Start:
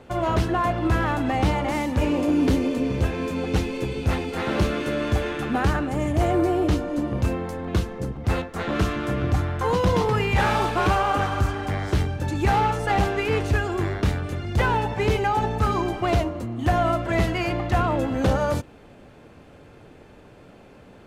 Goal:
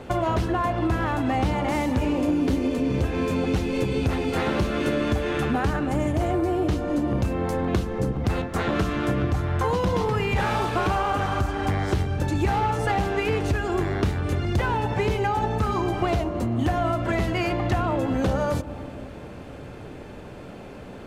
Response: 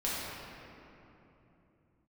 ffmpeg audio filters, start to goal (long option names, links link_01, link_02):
-filter_complex "[0:a]acompressor=threshold=-29dB:ratio=6,asplit=2[link_01][link_02];[1:a]atrim=start_sample=2205,lowpass=1300[link_03];[link_02][link_03]afir=irnorm=-1:irlink=0,volume=-18.5dB[link_04];[link_01][link_04]amix=inputs=2:normalize=0,volume=7dB"